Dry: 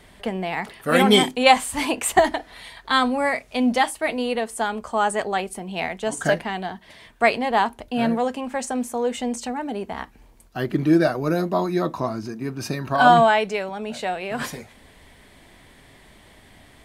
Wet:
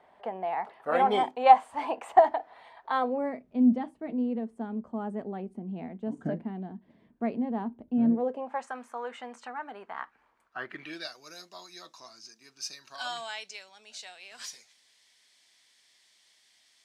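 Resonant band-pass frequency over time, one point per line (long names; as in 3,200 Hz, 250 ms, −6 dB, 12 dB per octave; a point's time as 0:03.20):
resonant band-pass, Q 2.4
0:02.89 790 Hz
0:03.44 230 Hz
0:08.07 230 Hz
0:08.67 1,300 Hz
0:10.61 1,300 Hz
0:11.14 5,500 Hz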